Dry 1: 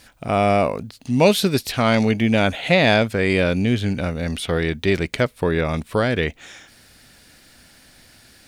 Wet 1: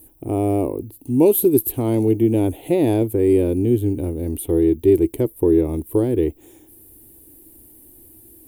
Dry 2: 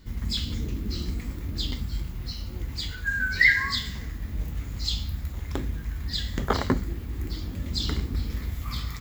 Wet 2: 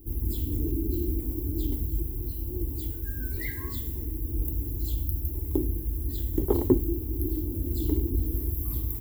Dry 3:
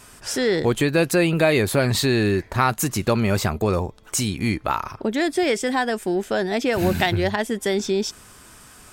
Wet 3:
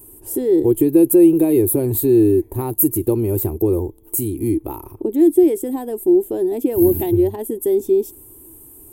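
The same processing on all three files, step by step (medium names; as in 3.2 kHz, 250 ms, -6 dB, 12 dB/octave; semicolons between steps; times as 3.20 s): FFT filter 110 Hz 0 dB, 200 Hz -12 dB, 330 Hz +12 dB, 620 Hz -12 dB, 900 Hz -8 dB, 1.4 kHz -27 dB, 2.9 kHz -19 dB, 5.3 kHz -25 dB, 12 kHz +14 dB; trim +1.5 dB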